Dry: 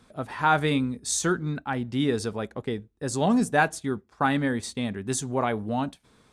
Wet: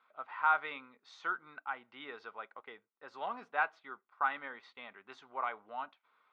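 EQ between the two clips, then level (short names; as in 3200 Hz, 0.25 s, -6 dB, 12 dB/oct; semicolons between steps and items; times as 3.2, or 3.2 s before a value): ladder band-pass 1600 Hz, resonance 30%; air absorption 280 m; notch 1700 Hz, Q 5.7; +7.0 dB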